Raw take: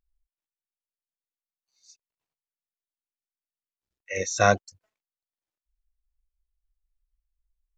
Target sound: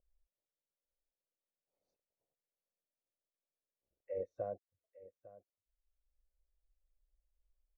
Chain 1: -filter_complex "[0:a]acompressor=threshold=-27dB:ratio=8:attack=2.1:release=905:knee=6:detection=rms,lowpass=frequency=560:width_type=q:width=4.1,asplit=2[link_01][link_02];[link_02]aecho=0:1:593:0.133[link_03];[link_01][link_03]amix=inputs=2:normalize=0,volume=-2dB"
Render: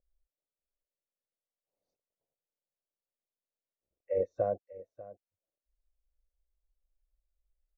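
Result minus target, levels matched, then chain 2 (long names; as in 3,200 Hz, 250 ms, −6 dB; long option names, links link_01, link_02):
downward compressor: peak gain reduction −10 dB; echo 260 ms early
-filter_complex "[0:a]acompressor=threshold=-38.5dB:ratio=8:attack=2.1:release=905:knee=6:detection=rms,lowpass=frequency=560:width_type=q:width=4.1,asplit=2[link_01][link_02];[link_02]aecho=0:1:853:0.133[link_03];[link_01][link_03]amix=inputs=2:normalize=0,volume=-2dB"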